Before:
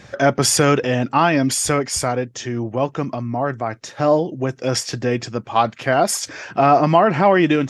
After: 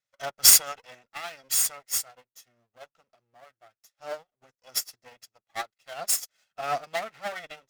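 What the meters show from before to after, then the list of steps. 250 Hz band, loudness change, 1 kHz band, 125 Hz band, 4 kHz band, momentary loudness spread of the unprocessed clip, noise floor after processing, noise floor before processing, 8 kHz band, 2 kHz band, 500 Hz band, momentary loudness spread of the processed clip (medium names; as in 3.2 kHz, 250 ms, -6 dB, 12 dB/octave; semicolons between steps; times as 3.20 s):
-36.0 dB, -4.5 dB, -18.5 dB, -33.5 dB, -3.0 dB, 10 LU, under -85 dBFS, -45 dBFS, -0.5 dB, -13.5 dB, -21.5 dB, 24 LU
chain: comb filter that takes the minimum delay 1.5 ms; tilt EQ +3.5 dB/octave; upward expansion 2.5:1, over -37 dBFS; trim -3.5 dB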